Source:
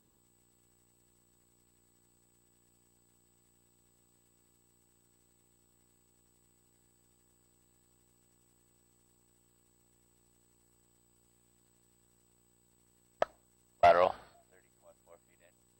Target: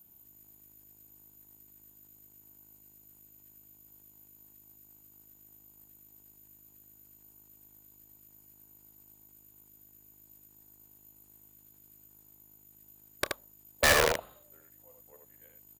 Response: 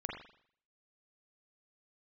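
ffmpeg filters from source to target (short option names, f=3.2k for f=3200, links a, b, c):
-filter_complex "[0:a]asetrate=38170,aresample=44100,atempo=1.15535,acrossover=split=100[a][b];[b]aexciter=amount=5.2:drive=7.7:freq=9k[c];[a][c]amix=inputs=2:normalize=0,aeval=exprs='(mod(7.08*val(0)+1,2)-1)/7.08':c=same,aecho=1:1:29|77:0.133|0.631"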